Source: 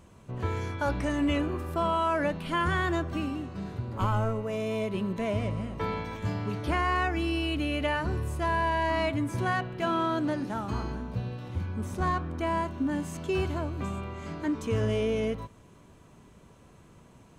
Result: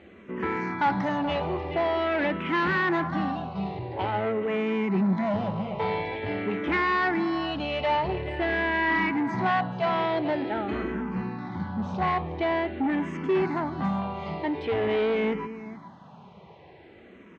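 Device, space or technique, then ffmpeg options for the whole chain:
barber-pole phaser into a guitar amplifier: -filter_complex "[0:a]lowshelf=frequency=110:gain=-6,aecho=1:1:427:0.168,asplit=2[link_01][link_02];[link_02]afreqshift=-0.47[link_03];[link_01][link_03]amix=inputs=2:normalize=1,asoftclip=type=tanh:threshold=-31.5dB,highpass=86,equalizer=frequency=110:width_type=q:width=4:gain=-6,equalizer=frequency=190:width_type=q:width=4:gain=7,equalizer=frequency=370:width_type=q:width=4:gain=5,equalizer=frequency=820:width_type=q:width=4:gain=10,equalizer=frequency=2000:width_type=q:width=4:gain=8,lowpass=frequency=4200:width=0.5412,lowpass=frequency=4200:width=1.3066,volume=7.5dB"

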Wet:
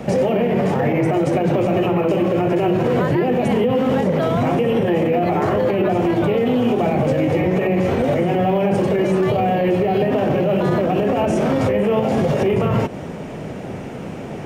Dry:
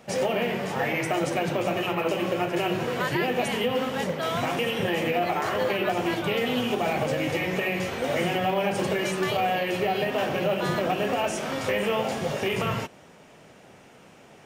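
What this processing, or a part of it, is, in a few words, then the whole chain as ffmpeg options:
mastering chain: -filter_complex "[0:a]equalizer=frequency=2200:width_type=o:width=0.77:gain=3,acrossover=split=360|1200[link_01][link_02][link_03];[link_01]acompressor=threshold=-35dB:ratio=4[link_04];[link_02]acompressor=threshold=-29dB:ratio=4[link_05];[link_03]acompressor=threshold=-37dB:ratio=4[link_06];[link_04][link_05][link_06]amix=inputs=3:normalize=0,acompressor=threshold=-34dB:ratio=2,tiltshelf=frequency=770:gain=8.5,alimiter=level_in=26.5dB:limit=-1dB:release=50:level=0:latency=1,volume=-9dB"

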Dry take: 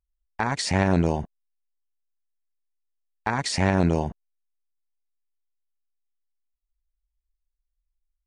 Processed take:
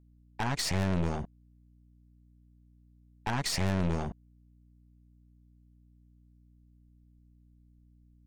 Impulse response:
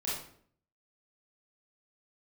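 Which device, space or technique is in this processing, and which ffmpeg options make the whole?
valve amplifier with mains hum: -af "aeval=exprs='(tanh(17.8*val(0)+0.6)-tanh(0.6))/17.8':channel_layout=same,aeval=exprs='val(0)+0.00112*(sin(2*PI*60*n/s)+sin(2*PI*2*60*n/s)/2+sin(2*PI*3*60*n/s)/3+sin(2*PI*4*60*n/s)/4+sin(2*PI*5*60*n/s)/5)':channel_layout=same"

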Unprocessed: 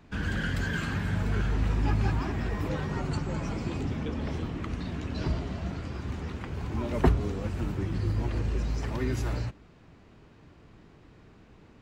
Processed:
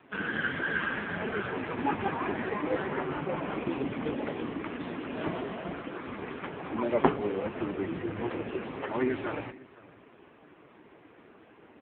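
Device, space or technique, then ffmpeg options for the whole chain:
satellite phone: -af "highpass=320,lowpass=3200,aecho=1:1:509:0.0794,volume=8.5dB" -ar 8000 -c:a libopencore_amrnb -b:a 5150

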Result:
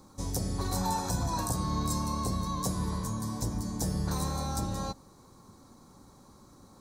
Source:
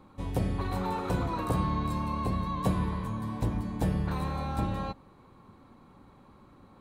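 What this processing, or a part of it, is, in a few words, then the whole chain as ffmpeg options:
over-bright horn tweeter: -filter_complex "[0:a]highshelf=frequency=4000:width_type=q:width=3:gain=13.5,alimiter=limit=-19dB:level=0:latency=1:release=270,asettb=1/sr,asplit=3[link_01][link_02][link_03];[link_01]atrim=end=0.784[link_04];[link_02]atrim=start=0.78:end=1.53,asetpts=PTS-STARTPTS,afade=type=in:duration=0.004:curve=qsin,afade=type=out:start_time=0.746:duration=0.004:curve=qsin,aecho=1:1:1.2:0.54,atrim=end_sample=33075[link_05];[link_03]atrim=start=1.526[link_06];[link_04][link_05]acrossfade=duration=0.004:curve1=hsin:curve2=qsin[link_07];[link_07][link_06]acrossfade=duration=0.004:curve1=qsin:curve2=hsin"

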